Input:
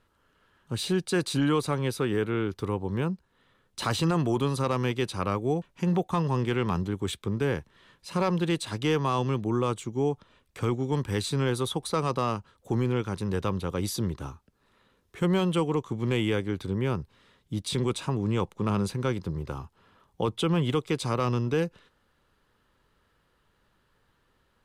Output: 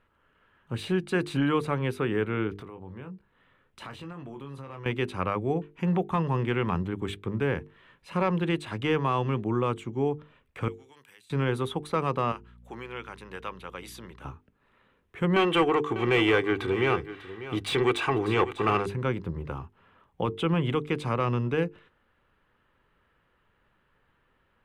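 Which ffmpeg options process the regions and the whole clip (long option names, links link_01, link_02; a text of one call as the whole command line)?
ffmpeg -i in.wav -filter_complex "[0:a]asettb=1/sr,asplit=3[link_01][link_02][link_03];[link_01]atrim=end=2.534[link_04];[link_02]atrim=start=2.53:end=4.86,asetpts=PTS-STARTPTS,afade=type=in:duration=0.004:curve=qsin,afade=type=out:start_time=2.326:duration=0.004:curve=qsin,asplit=2[link_05][link_06];[link_06]adelay=22,volume=-7dB[link_07];[link_05][link_07]amix=inputs=2:normalize=0,atrim=end_sample=102753,acompressor=threshold=-38dB:ratio=6:attack=3.2:release=140:knee=1:detection=peak[link_08];[link_03]atrim=start=4.856[link_09];[link_04][link_08]acrossfade=duration=0.004:curve1=hsin:curve2=qsin[link_10];[link_10][link_09]acrossfade=duration=0.004:curve1=qsin:curve2=hsin,asettb=1/sr,asplit=3[link_11][link_12][link_13];[link_11]atrim=end=10.684[link_14];[link_12]atrim=start=10.68:end=11.3,asetpts=PTS-STARTPTS,afade=type=in:duration=0.004:curve=qsin,afade=type=out:start_time=0.616:duration=0.004:curve=qsin,aderivative,acompressor=threshold=-48dB:ratio=10:attack=3.2:release=140:knee=1:detection=peak[link_15];[link_13]atrim=start=11.296[link_16];[link_14][link_15]acrossfade=duration=0.004:curve1=hsin:curve2=qsin[link_17];[link_17][link_16]acrossfade=duration=0.004:curve1=qsin:curve2=hsin,asettb=1/sr,asplit=3[link_18][link_19][link_20];[link_18]atrim=end=12.324[link_21];[link_19]atrim=start=12.32:end=14.25,asetpts=PTS-STARTPTS,afade=type=in:duration=0.004:curve=qsin,afade=type=out:start_time=1.926:duration=0.004:curve=qsin,highpass=frequency=1400:poles=1,aeval=exprs='val(0)+0.00282*(sin(2*PI*60*n/s)+sin(2*PI*2*60*n/s)/2+sin(2*PI*3*60*n/s)/3+sin(2*PI*4*60*n/s)/4+sin(2*PI*5*60*n/s)/5)':channel_layout=same[link_22];[link_20]atrim=start=14.246[link_23];[link_21][link_22]acrossfade=duration=0.004:curve1=hsin:curve2=qsin[link_24];[link_24][link_23]acrossfade=duration=0.004:curve1=qsin:curve2=hsin,asettb=1/sr,asplit=3[link_25][link_26][link_27];[link_25]atrim=end=15.364[link_28];[link_26]atrim=start=15.36:end=18.86,asetpts=PTS-STARTPTS,afade=type=in:duration=0.004:curve=qsin,afade=type=out:start_time=3.496:duration=0.004:curve=qsin,aecho=1:1:2.6:0.58,atrim=end_sample=154350,asplit=2[link_29][link_30];[link_30]highpass=frequency=720:poles=1,volume=17dB,asoftclip=type=tanh:threshold=-14dB[link_31];[link_29][link_31]amix=inputs=2:normalize=0,lowpass=frequency=6300:poles=1,volume=-6dB,aecho=1:1:596:0.2,atrim=end_sample=154350[link_32];[link_27]atrim=start=18.856[link_33];[link_28][link_32]acrossfade=duration=0.004:curve1=hsin:curve2=qsin[link_34];[link_34][link_33]acrossfade=duration=0.004:curve1=qsin:curve2=hsin,highshelf=frequency=3500:width_type=q:width=1.5:gain=-10.5,bandreject=frequency=50:width_type=h:width=6,bandreject=frequency=100:width_type=h:width=6,bandreject=frequency=150:width_type=h:width=6,bandreject=frequency=200:width_type=h:width=6,bandreject=frequency=250:width_type=h:width=6,bandreject=frequency=300:width_type=h:width=6,bandreject=frequency=350:width_type=h:width=6,bandreject=frequency=400:width_type=h:width=6,bandreject=frequency=450:width_type=h:width=6" out.wav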